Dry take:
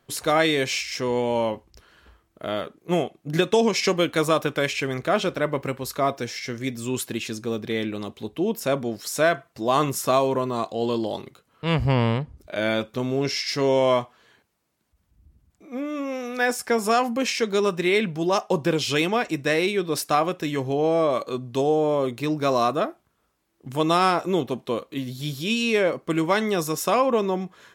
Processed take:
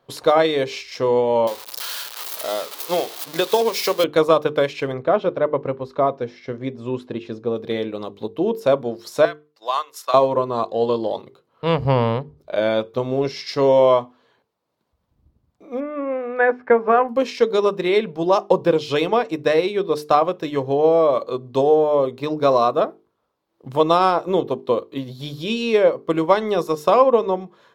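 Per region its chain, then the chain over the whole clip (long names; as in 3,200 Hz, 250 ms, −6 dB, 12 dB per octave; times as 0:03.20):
0:01.47–0:04.04: spike at every zero crossing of −13.5 dBFS + high-pass filter 560 Hz 6 dB per octave
0:04.92–0:07.56: head-to-tape spacing loss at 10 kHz 20 dB + notch filter 4,400 Hz, Q 28
0:09.25–0:10.14: high-pass filter 1,300 Hz + transient designer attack +1 dB, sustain −8 dB
0:15.80–0:17.09: Chebyshev low-pass filter 2,200 Hz, order 3 + parametric band 1,600 Hz +5.5 dB 0.61 octaves
whole clip: octave-band graphic EQ 125/250/500/1,000/4,000/8,000 Hz +7/+4/+12/+10/+8/−4 dB; transient designer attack +3 dB, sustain −4 dB; mains-hum notches 50/100/150/200/250/300/350/400/450 Hz; level −7.5 dB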